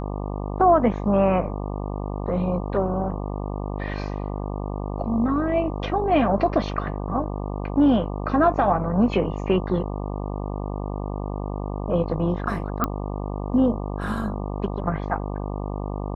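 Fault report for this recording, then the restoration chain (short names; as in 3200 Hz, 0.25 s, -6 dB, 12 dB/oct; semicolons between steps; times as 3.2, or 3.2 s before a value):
buzz 50 Hz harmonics 24 -29 dBFS
12.84 pop -9 dBFS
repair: de-click; de-hum 50 Hz, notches 24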